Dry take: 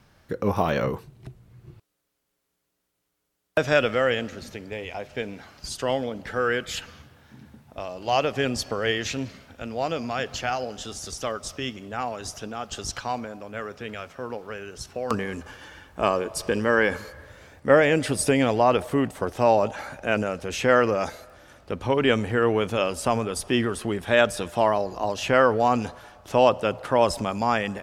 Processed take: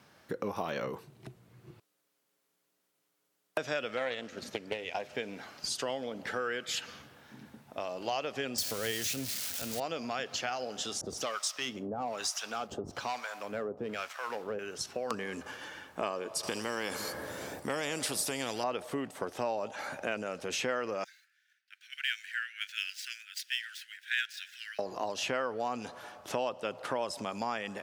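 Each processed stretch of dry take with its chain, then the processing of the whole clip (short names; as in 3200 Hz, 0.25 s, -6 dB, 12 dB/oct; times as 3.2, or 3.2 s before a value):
3.97–5.03 transient shaper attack +9 dB, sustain -5 dB + Doppler distortion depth 0.29 ms
8.58–9.8 switching spikes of -18 dBFS + bell 64 Hz +13.5 dB 2.7 oct + notch 1100 Hz, Q 16
11.01–14.59 sample leveller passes 2 + harmonic tremolo 1.1 Hz, depth 100%, crossover 800 Hz
16.43–18.64 bell 2100 Hz -12 dB 2.8 oct + notch 6500 Hz, Q 17 + spectral compressor 2:1
21.04–24.79 median filter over 5 samples + steep high-pass 1500 Hz 96 dB/oct + three-band expander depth 70%
whole clip: dynamic EQ 4800 Hz, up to +4 dB, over -43 dBFS, Q 0.72; compressor 4:1, threshold -32 dBFS; Bessel high-pass 220 Hz, order 2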